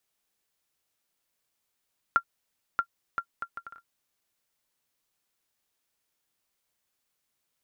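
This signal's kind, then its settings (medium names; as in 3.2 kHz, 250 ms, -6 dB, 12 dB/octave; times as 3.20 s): bouncing ball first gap 0.63 s, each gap 0.62, 1.38 kHz, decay 75 ms -11 dBFS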